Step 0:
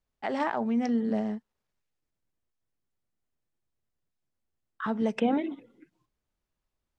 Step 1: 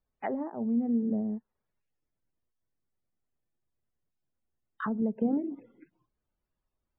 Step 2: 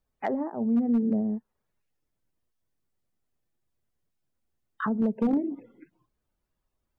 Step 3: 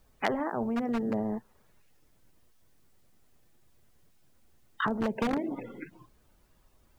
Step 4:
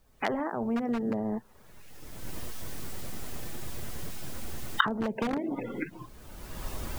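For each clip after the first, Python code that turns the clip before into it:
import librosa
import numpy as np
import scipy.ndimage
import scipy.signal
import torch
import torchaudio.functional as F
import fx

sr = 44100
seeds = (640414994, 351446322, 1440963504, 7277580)

y1 = fx.spec_topn(x, sr, count=64)
y1 = fx.env_lowpass_down(y1, sr, base_hz=390.0, full_db=-26.5)
y2 = np.clip(10.0 ** (22.5 / 20.0) * y1, -1.0, 1.0) / 10.0 ** (22.5 / 20.0)
y2 = y2 * librosa.db_to_amplitude(4.0)
y3 = fx.spectral_comp(y2, sr, ratio=2.0)
y3 = y3 * librosa.db_to_amplitude(6.0)
y4 = fx.recorder_agc(y3, sr, target_db=-20.5, rise_db_per_s=27.0, max_gain_db=30)
y4 = y4 * librosa.db_to_amplitude(-1.5)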